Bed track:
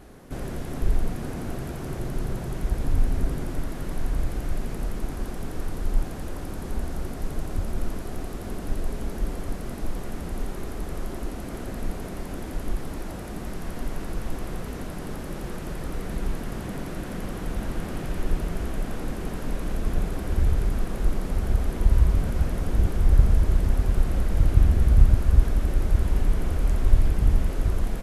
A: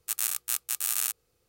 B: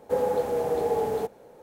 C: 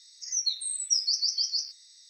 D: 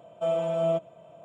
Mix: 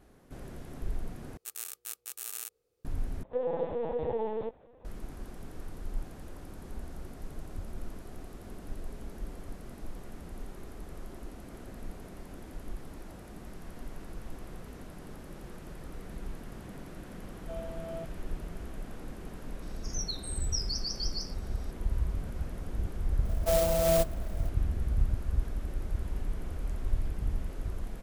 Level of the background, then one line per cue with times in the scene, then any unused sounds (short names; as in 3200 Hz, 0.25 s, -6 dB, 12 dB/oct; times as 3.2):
bed track -12 dB
1.37 replace with A -11.5 dB + bell 450 Hz +12 dB 0.78 oct
3.23 replace with B -6.5 dB + LPC vocoder at 8 kHz pitch kept
17.27 add D -15.5 dB
19.62 add C -9 dB
23.25 add D + clock jitter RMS 0.08 ms